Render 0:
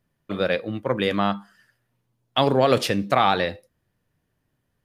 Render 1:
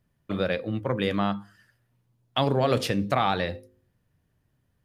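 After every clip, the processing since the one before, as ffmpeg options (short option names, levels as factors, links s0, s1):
-filter_complex "[0:a]asplit=2[s0][s1];[s1]acompressor=threshold=0.0501:ratio=6,volume=1.12[s2];[s0][s2]amix=inputs=2:normalize=0,equalizer=f=68:t=o:w=2.8:g=8,bandreject=f=52.05:t=h:w=4,bandreject=f=104.1:t=h:w=4,bandreject=f=156.15:t=h:w=4,bandreject=f=208.2:t=h:w=4,bandreject=f=260.25:t=h:w=4,bandreject=f=312.3:t=h:w=4,bandreject=f=364.35:t=h:w=4,bandreject=f=416.4:t=h:w=4,bandreject=f=468.45:t=h:w=4,bandreject=f=520.5:t=h:w=4,volume=0.398"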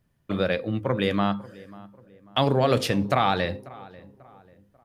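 -filter_complex "[0:a]asplit=2[s0][s1];[s1]adelay=541,lowpass=f=1800:p=1,volume=0.1,asplit=2[s2][s3];[s3]adelay=541,lowpass=f=1800:p=1,volume=0.41,asplit=2[s4][s5];[s5]adelay=541,lowpass=f=1800:p=1,volume=0.41[s6];[s0][s2][s4][s6]amix=inputs=4:normalize=0,volume=1.26"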